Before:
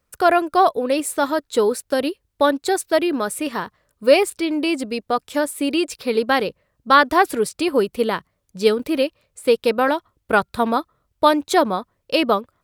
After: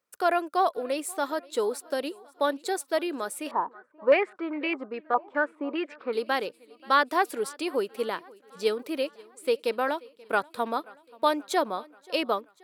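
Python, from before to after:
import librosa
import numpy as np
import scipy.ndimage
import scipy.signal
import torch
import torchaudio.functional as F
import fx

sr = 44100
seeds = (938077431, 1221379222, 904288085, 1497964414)

y = scipy.signal.sosfilt(scipy.signal.butter(2, 300.0, 'highpass', fs=sr, output='sos'), x)
y = fx.echo_feedback(y, sr, ms=532, feedback_pct=60, wet_db=-24.0)
y = fx.filter_held_lowpass(y, sr, hz=4.9, low_hz=920.0, high_hz=2100.0, at=(3.51, 6.13))
y = F.gain(torch.from_numpy(y), -8.5).numpy()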